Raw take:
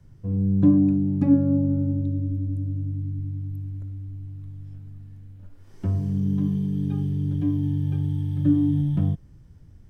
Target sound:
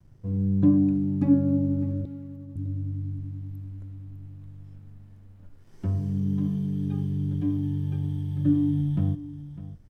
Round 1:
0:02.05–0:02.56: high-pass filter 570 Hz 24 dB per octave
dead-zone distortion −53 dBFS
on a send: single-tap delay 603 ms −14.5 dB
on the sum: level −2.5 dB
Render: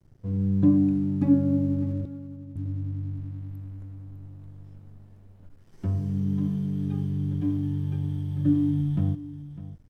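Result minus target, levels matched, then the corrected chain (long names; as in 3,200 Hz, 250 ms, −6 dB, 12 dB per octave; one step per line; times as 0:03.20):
dead-zone distortion: distortion +7 dB
0:02.05–0:02.56: high-pass filter 570 Hz 24 dB per octave
dead-zone distortion −60.5 dBFS
on a send: single-tap delay 603 ms −14.5 dB
on the sum: level −2.5 dB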